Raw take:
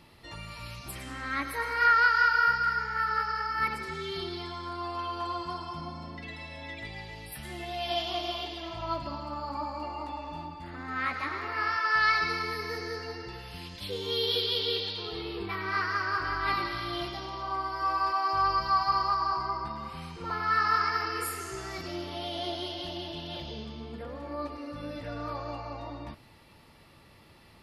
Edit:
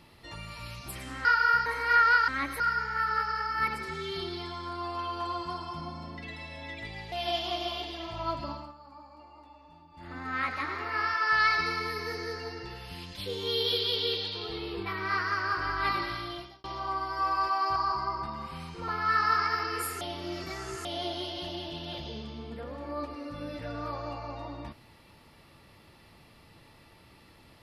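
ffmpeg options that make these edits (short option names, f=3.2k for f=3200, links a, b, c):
-filter_complex "[0:a]asplit=12[a][b][c][d][e][f][g][h][i][j][k][l];[a]atrim=end=1.252[m];[b]atrim=start=2.188:end=2.602[n];[c]atrim=start=1.568:end=2.192[o];[d]atrim=start=1.248:end=1.572[p];[e]atrim=start=2.598:end=7.122[q];[f]atrim=start=7.748:end=9.37,asetpts=PTS-STARTPTS,afade=t=out:st=1.392:d=0.23:silence=0.16788[r];[g]atrim=start=9.37:end=10.53,asetpts=PTS-STARTPTS,volume=-15.5dB[s];[h]atrim=start=10.53:end=17.27,asetpts=PTS-STARTPTS,afade=t=in:d=0.23:silence=0.16788,afade=t=out:st=6.19:d=0.55[t];[i]atrim=start=17.27:end=18.392,asetpts=PTS-STARTPTS,afade=t=in:d=0.004:c=hsin[u];[j]atrim=start=19.178:end=21.432[v];[k]atrim=start=21.428:end=22.272,asetpts=PTS-STARTPTS,areverse[w];[l]atrim=start=22.268[x];[m][n]acrossfade=d=0.004:c1=hsin:c2=hsin[y];[y][o]acrossfade=d=0.004:c1=hsin:c2=hsin[z];[z][p]acrossfade=d=0.004:c1=hsin:c2=hsin[aa];[aa][q]acrossfade=d=0.004:c1=hsin:c2=hsin[ab];[r][s][t][u]concat=n=4:v=0:a=1[ac];[ab][ac]acrossfade=d=0.004:c1=hsin:c2=hsin[ad];[ad][v]acrossfade=d=0.004:c1=hsin:c2=hsin[ae];[ae][w]acrossfade=d=0.004:c1=hsin:c2=hsin[af];[af][x]acrossfade=d=0.004:c1=hsin:c2=hsin"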